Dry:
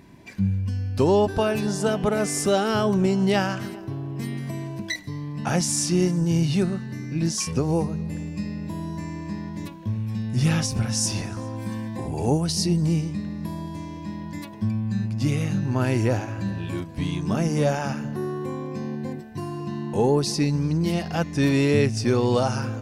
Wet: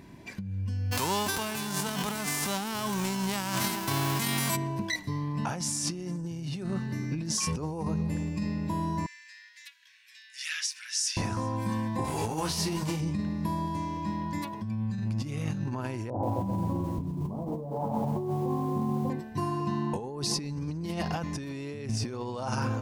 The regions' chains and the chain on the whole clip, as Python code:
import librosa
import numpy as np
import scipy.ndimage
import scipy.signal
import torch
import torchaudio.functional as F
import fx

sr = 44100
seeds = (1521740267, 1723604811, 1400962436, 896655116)

y = fx.envelope_flatten(x, sr, power=0.3, at=(0.91, 4.55), fade=0.02)
y = fx.peak_eq(y, sr, hz=200.0, db=5.5, octaves=1.0, at=(0.91, 4.55), fade=0.02)
y = fx.over_compress(y, sr, threshold_db=-22.0, ratio=-1.0, at=(0.91, 4.55), fade=0.02)
y = fx.chain(y, sr, fx.ellip_highpass(hz=1700.0, order=4, stop_db=70),
    fx.high_shelf(hz=11000.0, db=-11.0), at=(9.06, 11.17))
y = fx.envelope_flatten(y, sr, power=0.6, at=(12.04, 12.99), fade=0.02)
y = fx.dynamic_eq(y, sr, hz=8900.0, q=0.91, threshold_db=-38.0, ratio=4.0, max_db=-5, at=(12.04, 12.99), fade=0.02)
y = fx.detune_double(y, sr, cents=31, at=(12.04, 12.99), fade=0.02)
y = fx.chain(y, sr, fx.steep_lowpass(hz=1000.0, slope=48),
    fx.doubler(ms=22.0, db=-4.0),
    fx.echo_crushed(ms=129, feedback_pct=55, bits=8, wet_db=-6.5), at=(16.1, 19.1))
y = fx.over_compress(y, sr, threshold_db=-28.0, ratio=-1.0)
y = fx.dynamic_eq(y, sr, hz=990.0, q=3.6, threshold_db=-53.0, ratio=4.0, max_db=8)
y = y * 10.0 ** (-3.5 / 20.0)